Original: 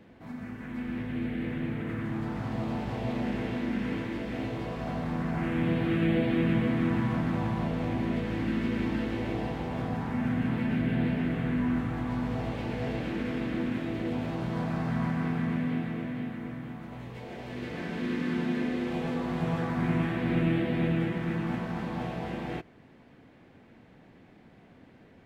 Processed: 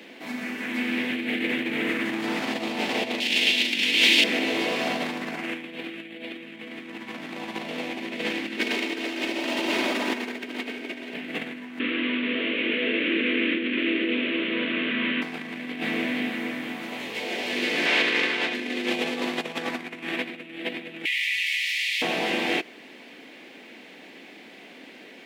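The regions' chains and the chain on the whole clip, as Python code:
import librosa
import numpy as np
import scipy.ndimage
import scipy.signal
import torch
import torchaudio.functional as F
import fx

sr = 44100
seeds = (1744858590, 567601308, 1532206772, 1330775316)

y = fx.chain(x, sr, fx.high_shelf_res(hz=2100.0, db=13.5, q=1.5),
    fx.doubler(ms=17.0, db=-14.0), at=(3.2, 4.24))
y = fx.chain(y, sr, fx.lower_of_two(delay_ms=3.2),
    fx.echo_split(split_hz=400.0, low_ms=310, high_ms=96, feedback_pct=52, wet_db=-3.5), at=(8.57, 11.14))
y = fx.chain(y, sr, fx.delta_mod(bps=16000, step_db=-37.5),
    fx.fixed_phaser(hz=330.0, stages=4), at=(11.79, 15.22))
y = fx.spec_clip(y, sr, under_db=18, at=(17.85, 18.53), fade=0.02)
y = fx.lowpass(y, sr, hz=3200.0, slope=6, at=(17.85, 18.53), fade=0.02)
y = fx.chain(y, sr, fx.steep_highpass(hz=1900.0, slope=96),
    fx.env_flatten(amount_pct=70), at=(21.05, 22.02))
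y = fx.over_compress(y, sr, threshold_db=-33.0, ratio=-0.5)
y = scipy.signal.sosfilt(scipy.signal.butter(4, 260.0, 'highpass', fs=sr, output='sos'), y)
y = fx.high_shelf_res(y, sr, hz=1800.0, db=9.0, q=1.5)
y = y * librosa.db_to_amplitude(7.0)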